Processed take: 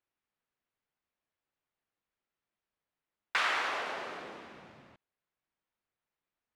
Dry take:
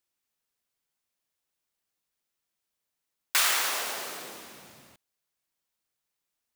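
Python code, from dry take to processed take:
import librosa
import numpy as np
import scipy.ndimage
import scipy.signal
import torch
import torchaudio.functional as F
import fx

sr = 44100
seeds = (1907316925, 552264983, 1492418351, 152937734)

y = scipy.signal.sosfilt(scipy.signal.butter(2, 2300.0, 'lowpass', fs=sr, output='sos'), x)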